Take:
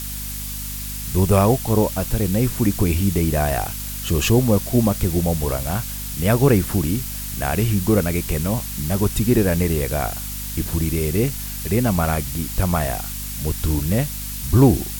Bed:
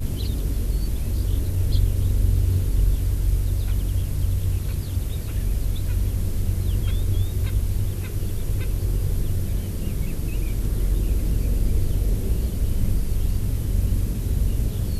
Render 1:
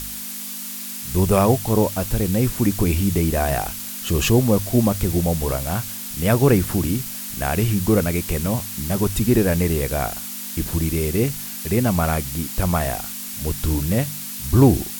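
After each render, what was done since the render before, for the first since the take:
hum removal 50 Hz, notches 3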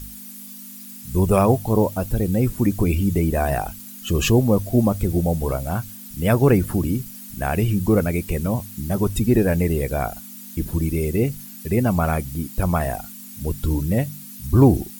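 broadband denoise 13 dB, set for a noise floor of −32 dBFS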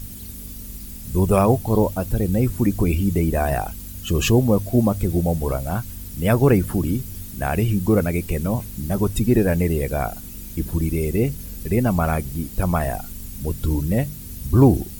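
mix in bed −14.5 dB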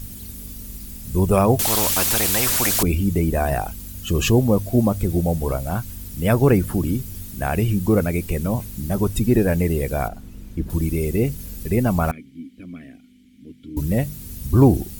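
0:01.59–0:02.83: every bin compressed towards the loudest bin 4 to 1
0:10.08–0:10.70: low-pass filter 1,500 Hz 6 dB per octave
0:12.11–0:13.77: formant filter i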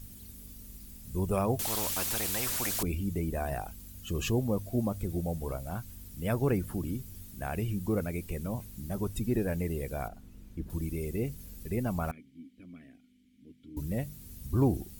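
level −12.5 dB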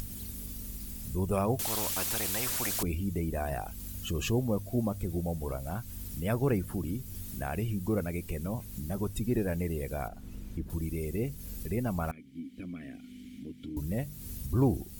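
upward compression, threshold −31 dBFS

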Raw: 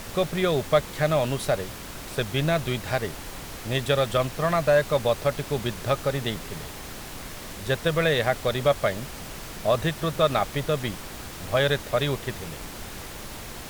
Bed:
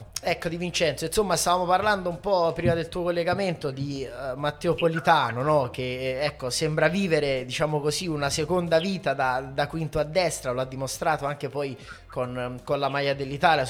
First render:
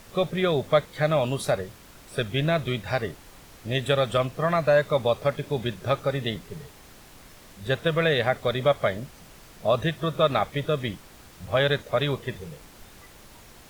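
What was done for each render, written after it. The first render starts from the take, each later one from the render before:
noise reduction from a noise print 11 dB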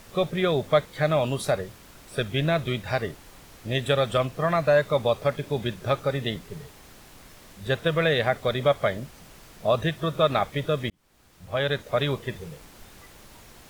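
0:10.90–0:11.98: fade in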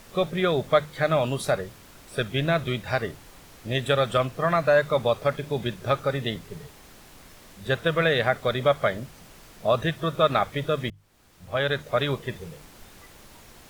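mains-hum notches 50/100/150 Hz
dynamic equaliser 1,400 Hz, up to +4 dB, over −38 dBFS, Q 2.7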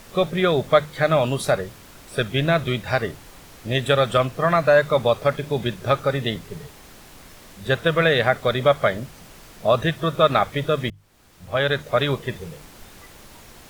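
level +4 dB

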